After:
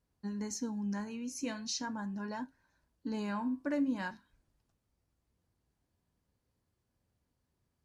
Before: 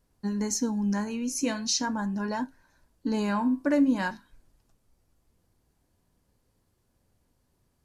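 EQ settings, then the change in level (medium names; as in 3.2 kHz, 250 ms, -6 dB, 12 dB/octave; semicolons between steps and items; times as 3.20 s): high-pass 46 Hz; peaking EQ 480 Hz -3 dB 2.9 oct; treble shelf 6.8 kHz -8.5 dB; -7.0 dB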